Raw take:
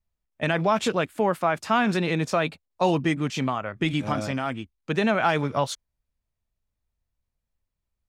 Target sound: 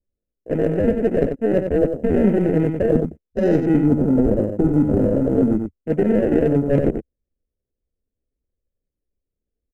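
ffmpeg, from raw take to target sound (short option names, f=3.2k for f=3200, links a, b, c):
-af "acrusher=samples=39:mix=1:aa=0.000001,afwtdn=0.0224,equalizer=f=125:t=o:w=1:g=-4,equalizer=f=250:t=o:w=1:g=4,equalizer=f=500:t=o:w=1:g=11,equalizer=f=1k:t=o:w=1:g=-10,equalizer=f=2k:t=o:w=1:g=8,equalizer=f=4k:t=o:w=1:g=-10,equalizer=f=8k:t=o:w=1:g=6,areverse,acompressor=threshold=-26dB:ratio=10,areverse,aeval=exprs='0.119*(cos(1*acos(clip(val(0)/0.119,-1,1)))-cos(1*PI/2))+0.00211*(cos(8*acos(clip(val(0)/0.119,-1,1)))-cos(8*PI/2))':c=same,tiltshelf=f=640:g=7,aecho=1:1:77:0.473,atempo=0.83,volume=8.5dB"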